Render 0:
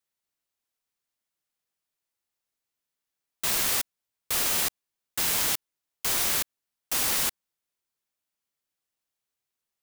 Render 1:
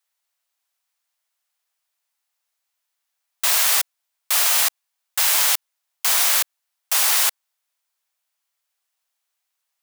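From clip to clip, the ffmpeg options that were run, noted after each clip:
-af "highpass=f=630:w=0.5412,highpass=f=630:w=1.3066,volume=8dB"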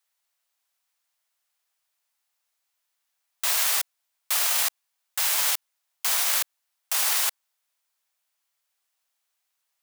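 -af "alimiter=limit=-14dB:level=0:latency=1:release=21"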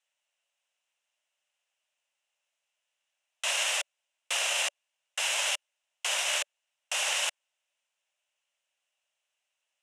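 -af "highpass=370,equalizer=f=580:t=q:w=4:g=9,equalizer=f=1.2k:t=q:w=4:g=-4,equalizer=f=2.8k:t=q:w=4:g=10,equalizer=f=4.5k:t=q:w=4:g=-9,lowpass=f=8.5k:w=0.5412,lowpass=f=8.5k:w=1.3066,volume=-2.5dB"

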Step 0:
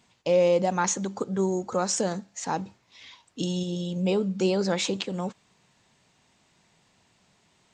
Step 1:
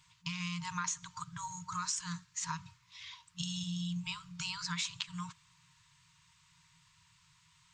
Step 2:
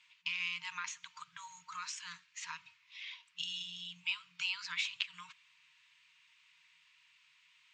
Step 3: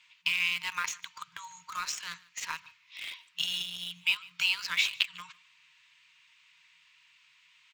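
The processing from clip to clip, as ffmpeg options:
-af "afftfilt=real='re*(1-between(b*sr/4096,180,910))':imag='im*(1-between(b*sr/4096,180,910))':win_size=4096:overlap=0.75,equalizer=f=1.7k:w=1.5:g=-2.5,acompressor=threshold=-34dB:ratio=4"
-af "bandpass=f=2.5k:t=q:w=2.6:csg=0,volume=7dB"
-filter_complex "[0:a]asplit=2[a][b];[b]aeval=exprs='val(0)*gte(abs(val(0)),0.01)':c=same,volume=-3.5dB[c];[a][c]amix=inputs=2:normalize=0,aecho=1:1:149:0.0668,volume=4.5dB"

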